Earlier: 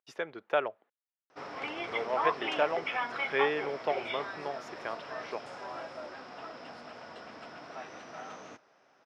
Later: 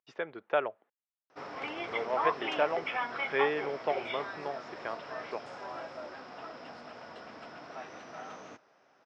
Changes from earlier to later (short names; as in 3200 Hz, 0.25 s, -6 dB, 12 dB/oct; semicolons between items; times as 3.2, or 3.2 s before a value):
background: remove LPF 4000 Hz 12 dB/oct; master: add Gaussian blur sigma 1.8 samples